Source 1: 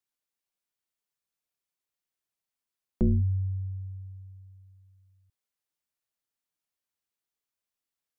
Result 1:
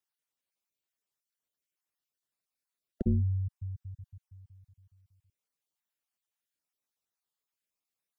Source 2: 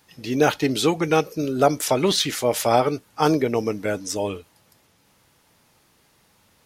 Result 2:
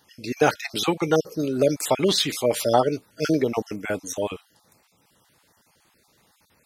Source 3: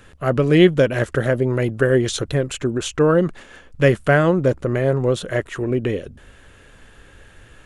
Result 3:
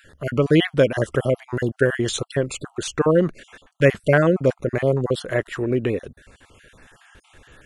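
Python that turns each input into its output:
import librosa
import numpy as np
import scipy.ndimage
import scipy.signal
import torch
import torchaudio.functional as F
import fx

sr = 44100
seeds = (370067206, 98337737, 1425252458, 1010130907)

y = fx.spec_dropout(x, sr, seeds[0], share_pct=32)
y = fx.low_shelf(y, sr, hz=77.0, db=-6.5)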